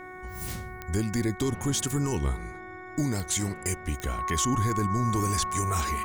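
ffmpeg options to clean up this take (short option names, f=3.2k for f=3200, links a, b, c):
-af "adeclick=t=4,bandreject=f=368.7:t=h:w=4,bandreject=f=737.4:t=h:w=4,bandreject=f=1.1061k:t=h:w=4,bandreject=f=1.4748k:t=h:w=4,bandreject=f=1.8435k:t=h:w=4,bandreject=f=2.2122k:t=h:w=4,bandreject=f=1.1k:w=30"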